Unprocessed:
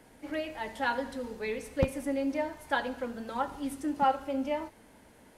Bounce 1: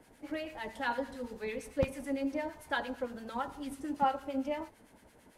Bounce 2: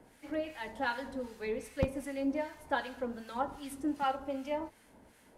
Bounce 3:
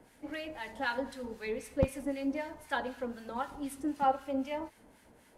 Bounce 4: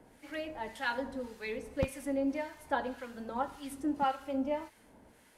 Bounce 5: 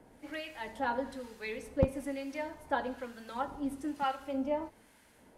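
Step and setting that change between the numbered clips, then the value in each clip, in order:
two-band tremolo in antiphase, speed: 8.9, 2.6, 3.9, 1.8, 1.1 Hertz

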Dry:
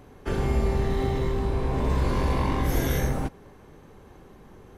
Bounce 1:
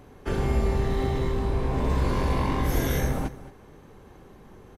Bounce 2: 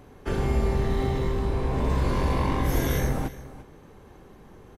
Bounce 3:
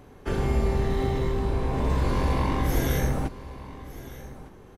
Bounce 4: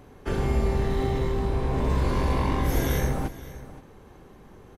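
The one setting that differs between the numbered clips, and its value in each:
single-tap delay, delay time: 221, 346, 1,208, 521 milliseconds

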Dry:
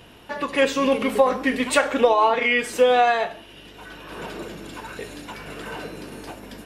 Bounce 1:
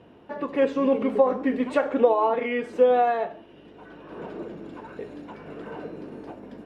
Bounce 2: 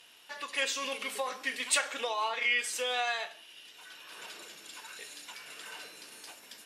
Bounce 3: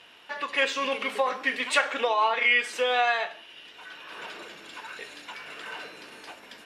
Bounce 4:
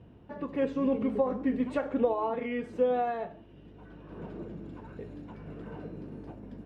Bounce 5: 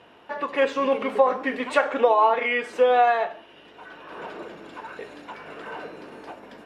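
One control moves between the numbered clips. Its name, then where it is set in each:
resonant band-pass, frequency: 330, 7,100, 2,600, 110, 870 Hertz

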